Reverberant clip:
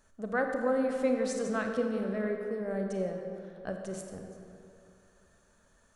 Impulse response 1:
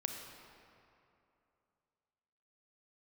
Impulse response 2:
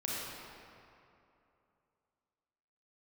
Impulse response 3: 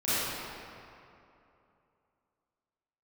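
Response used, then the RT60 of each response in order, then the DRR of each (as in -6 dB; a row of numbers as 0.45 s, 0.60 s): 1; 2.8 s, 2.8 s, 2.8 s; 3.0 dB, -6.0 dB, -15.5 dB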